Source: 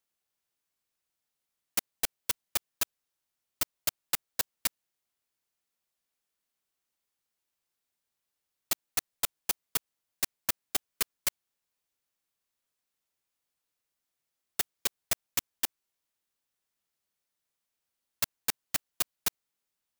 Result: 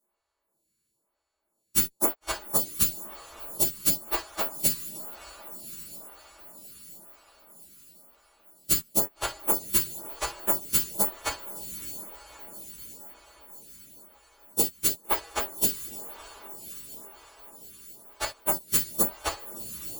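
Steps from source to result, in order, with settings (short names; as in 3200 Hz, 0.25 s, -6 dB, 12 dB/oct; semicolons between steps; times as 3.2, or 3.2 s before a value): frequency quantiser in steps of 2 st; in parallel at -5.5 dB: sample-rate reducer 2100 Hz, jitter 20%; on the sum: diffused feedback echo 0.62 s, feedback 68%, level -14 dB; non-linear reverb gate 90 ms falling, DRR 0 dB; photocell phaser 1 Hz; gain -5.5 dB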